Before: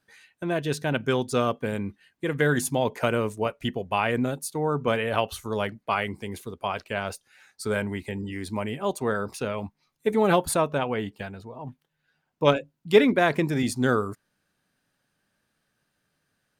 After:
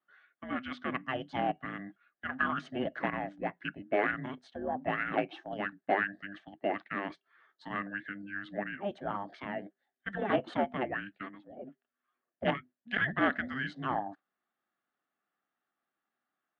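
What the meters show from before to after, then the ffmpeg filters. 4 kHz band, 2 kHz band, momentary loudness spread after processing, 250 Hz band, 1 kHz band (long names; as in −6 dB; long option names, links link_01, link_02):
−11.5 dB, −3.5 dB, 13 LU, −9.5 dB, −6.0 dB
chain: -af "agate=range=-7dB:threshold=-41dB:ratio=16:detection=peak,equalizer=frequency=540:width_type=o:width=2.3:gain=4.5,afreqshift=-400,aeval=exprs='(tanh(3.55*val(0)+0.35)-tanh(0.35))/3.55':channel_layout=same,highpass=380,equalizer=frequency=480:width_type=q:width=4:gain=-5,equalizer=frequency=680:width_type=q:width=4:gain=7,equalizer=frequency=1000:width_type=q:width=4:gain=-8,equalizer=frequency=1700:width_type=q:width=4:gain=9,equalizer=frequency=2400:width_type=q:width=4:gain=-6,lowpass=frequency=3100:width=0.5412,lowpass=frequency=3100:width=1.3066,volume=-3dB"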